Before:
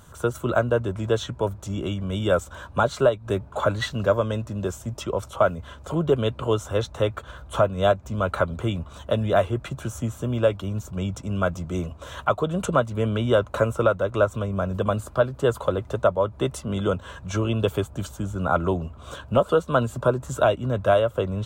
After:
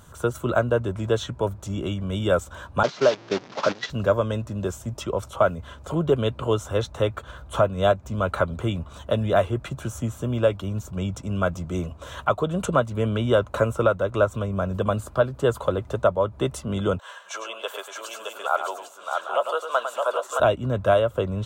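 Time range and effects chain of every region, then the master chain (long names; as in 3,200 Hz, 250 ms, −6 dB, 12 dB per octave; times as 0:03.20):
0:02.83–0:03.90: linear delta modulator 32 kbit/s, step −21 dBFS + high-pass filter 160 Hz 24 dB per octave + noise gate −26 dBFS, range −13 dB
0:16.99–0:20.40: high-pass filter 620 Hz 24 dB per octave + multi-tap delay 103/617/801 ms −8.5/−4/−7.5 dB
whole clip: no processing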